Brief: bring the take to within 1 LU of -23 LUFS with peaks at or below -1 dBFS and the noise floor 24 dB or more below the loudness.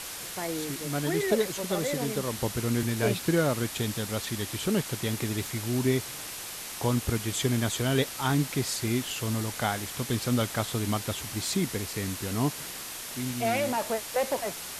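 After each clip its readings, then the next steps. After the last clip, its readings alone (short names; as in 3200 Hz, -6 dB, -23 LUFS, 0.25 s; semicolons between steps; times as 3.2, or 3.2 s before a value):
noise floor -39 dBFS; noise floor target -53 dBFS; loudness -29.0 LUFS; peak -12.5 dBFS; loudness target -23.0 LUFS
-> denoiser 14 dB, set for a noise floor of -39 dBFS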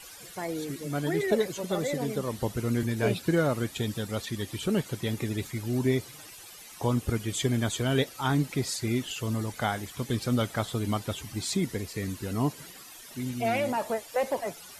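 noise floor -47 dBFS; noise floor target -54 dBFS
-> denoiser 7 dB, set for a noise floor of -47 dBFS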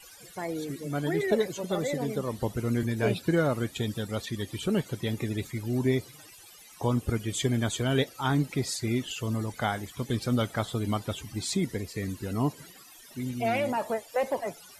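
noise floor -51 dBFS; noise floor target -54 dBFS
-> denoiser 6 dB, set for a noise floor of -51 dBFS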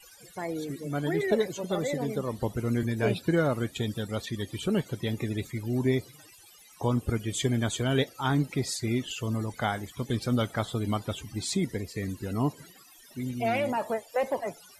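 noise floor -54 dBFS; loudness -30.0 LUFS; peak -13.0 dBFS; loudness target -23.0 LUFS
-> gain +7 dB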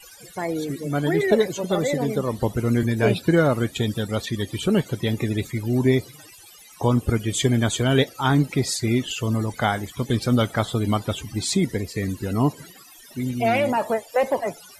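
loudness -23.0 LUFS; peak -6.0 dBFS; noise floor -47 dBFS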